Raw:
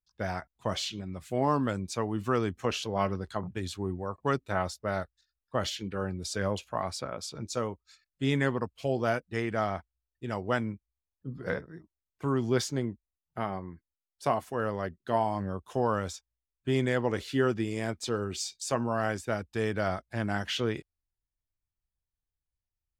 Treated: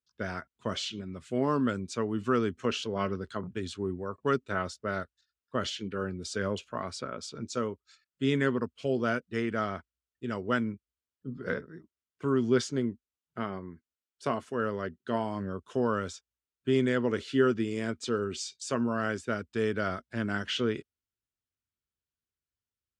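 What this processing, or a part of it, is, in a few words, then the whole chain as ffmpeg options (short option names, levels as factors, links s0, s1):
car door speaker: -af "highpass=83,equalizer=f=240:t=q:w=4:g=7,equalizer=f=410:t=q:w=4:g=6,equalizer=f=790:t=q:w=4:g=-9,equalizer=f=1400:t=q:w=4:g=6,equalizer=f=3000:t=q:w=4:g=4,lowpass=f=9000:w=0.5412,lowpass=f=9000:w=1.3066,volume=0.75"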